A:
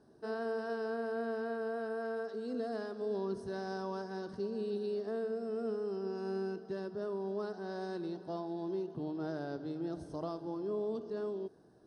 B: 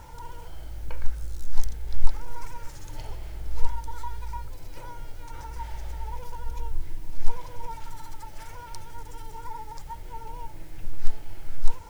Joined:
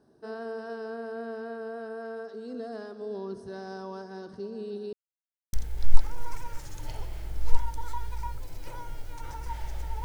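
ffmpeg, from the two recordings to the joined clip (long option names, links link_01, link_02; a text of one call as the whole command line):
ffmpeg -i cue0.wav -i cue1.wav -filter_complex "[0:a]apad=whole_dur=10.04,atrim=end=10.04,asplit=2[link_01][link_02];[link_01]atrim=end=4.93,asetpts=PTS-STARTPTS,afade=type=out:start_time=4.926:duration=0.004:curve=hsin[link_03];[link_02]atrim=start=4.93:end=5.53,asetpts=PTS-STARTPTS,volume=0[link_04];[1:a]atrim=start=1.63:end=6.14,asetpts=PTS-STARTPTS,afade=type=in:duration=0.004:curve=hsin[link_05];[link_03][link_04][link_05]concat=n=3:v=0:a=1" out.wav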